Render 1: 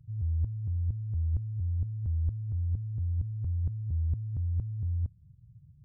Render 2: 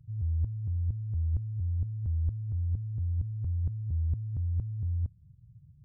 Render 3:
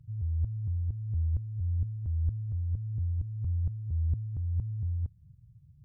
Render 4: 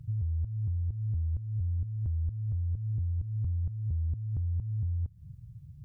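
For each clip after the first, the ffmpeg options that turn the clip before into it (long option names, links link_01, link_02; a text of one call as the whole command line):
ffmpeg -i in.wav -af anull out.wav
ffmpeg -i in.wav -af "aphaser=in_gain=1:out_gain=1:delay=3:decay=0.24:speed=1.7:type=triangular,volume=-1.5dB" out.wav
ffmpeg -i in.wav -af "acompressor=threshold=-38dB:ratio=6,volume=8.5dB" out.wav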